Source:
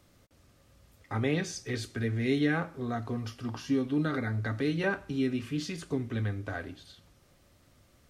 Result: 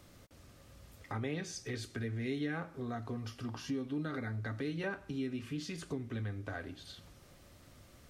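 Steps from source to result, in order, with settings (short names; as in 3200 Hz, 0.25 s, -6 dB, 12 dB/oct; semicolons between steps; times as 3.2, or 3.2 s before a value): compressor 2:1, threshold -49 dBFS, peak gain reduction 14.5 dB; gain +4 dB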